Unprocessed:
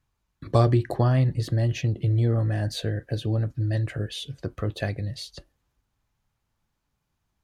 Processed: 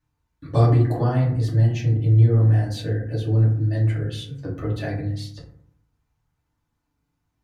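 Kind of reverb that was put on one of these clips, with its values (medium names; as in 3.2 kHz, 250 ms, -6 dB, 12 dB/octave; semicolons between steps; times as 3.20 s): FDN reverb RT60 0.62 s, low-frequency decay 1.5×, high-frequency decay 0.4×, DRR -6 dB; trim -6.5 dB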